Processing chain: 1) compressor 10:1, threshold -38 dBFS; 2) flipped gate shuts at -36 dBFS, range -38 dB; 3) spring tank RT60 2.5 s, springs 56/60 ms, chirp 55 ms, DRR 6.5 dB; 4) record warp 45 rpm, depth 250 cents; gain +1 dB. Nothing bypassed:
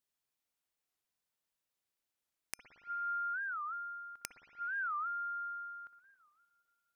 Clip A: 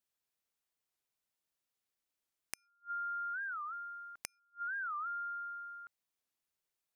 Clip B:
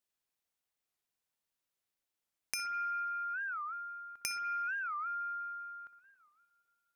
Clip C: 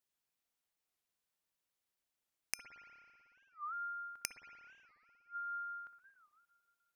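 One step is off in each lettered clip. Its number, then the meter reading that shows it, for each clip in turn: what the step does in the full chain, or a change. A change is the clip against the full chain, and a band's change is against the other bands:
3, momentary loudness spread change -2 LU; 2, momentary loudness spread change -5 LU; 1, mean gain reduction 5.5 dB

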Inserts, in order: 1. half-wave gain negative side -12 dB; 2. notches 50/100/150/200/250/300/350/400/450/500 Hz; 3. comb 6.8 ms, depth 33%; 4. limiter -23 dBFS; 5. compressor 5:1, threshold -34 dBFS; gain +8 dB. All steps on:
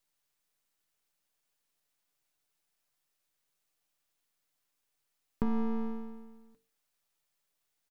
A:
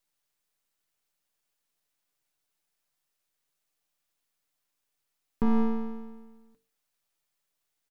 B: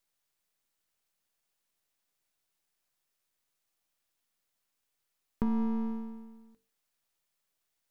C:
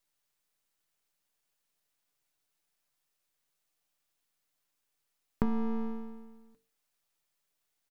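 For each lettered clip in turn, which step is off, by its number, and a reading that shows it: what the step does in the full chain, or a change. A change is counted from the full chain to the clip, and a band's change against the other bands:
5, mean gain reduction 2.0 dB; 3, 500 Hz band -4.0 dB; 4, crest factor change +4.0 dB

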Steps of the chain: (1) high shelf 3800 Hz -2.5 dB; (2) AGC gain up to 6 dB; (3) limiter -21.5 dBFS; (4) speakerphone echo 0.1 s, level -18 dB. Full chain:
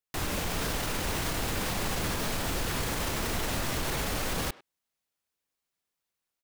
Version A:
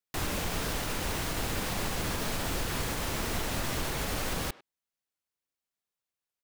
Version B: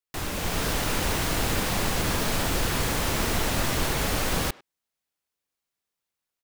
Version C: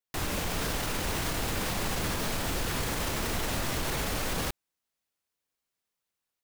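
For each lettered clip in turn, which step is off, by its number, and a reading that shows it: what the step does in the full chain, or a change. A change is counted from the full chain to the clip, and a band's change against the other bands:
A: 2, loudness change -1.5 LU; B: 3, mean gain reduction 5.0 dB; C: 4, echo-to-direct -22.5 dB to none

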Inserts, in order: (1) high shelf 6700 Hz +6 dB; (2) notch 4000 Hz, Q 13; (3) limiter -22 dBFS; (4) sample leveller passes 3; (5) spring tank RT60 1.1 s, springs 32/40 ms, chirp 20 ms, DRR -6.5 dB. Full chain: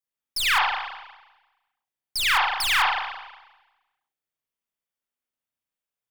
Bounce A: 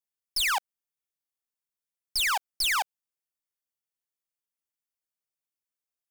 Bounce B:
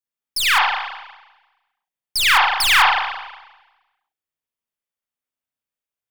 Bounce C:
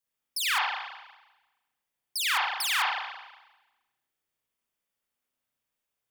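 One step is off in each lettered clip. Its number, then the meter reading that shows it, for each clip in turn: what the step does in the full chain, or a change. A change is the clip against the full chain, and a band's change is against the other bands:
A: 5, momentary loudness spread change -9 LU; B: 3, mean gain reduction 4.5 dB; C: 4, 8 kHz band +4.5 dB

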